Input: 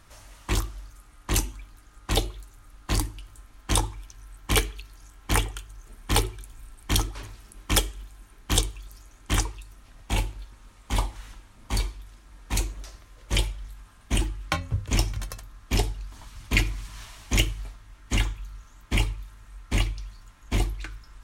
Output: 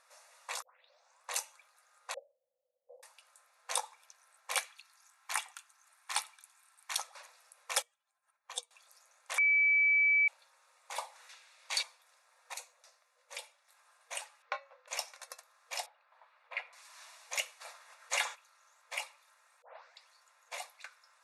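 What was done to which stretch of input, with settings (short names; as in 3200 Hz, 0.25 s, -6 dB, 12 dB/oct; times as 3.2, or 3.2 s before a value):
0.62 tape start 0.69 s
2.14–3.03 elliptic low-pass 530 Hz, stop band 60 dB
4.64–6.98 HPF 820 Hz 24 dB/oct
7.82–8.71 spectral contrast raised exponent 1.6
9.38–10.28 bleep 2300 Hz -15.5 dBFS
11.29–11.83 weighting filter D
12.54–13.68 gain -6.5 dB
14.42–14.88 air absorption 240 m
15.86–16.73 air absorption 490 m
17.6–18.34 spectral limiter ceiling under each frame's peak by 20 dB
19.62 tape start 0.45 s
whole clip: notch 3100 Hz, Q 5.8; FFT band-pass 480–12000 Hz; gain -7.5 dB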